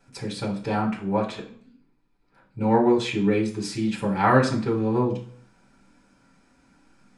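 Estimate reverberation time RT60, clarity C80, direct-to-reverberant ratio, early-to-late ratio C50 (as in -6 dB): 0.50 s, 14.0 dB, -8.0 dB, 9.5 dB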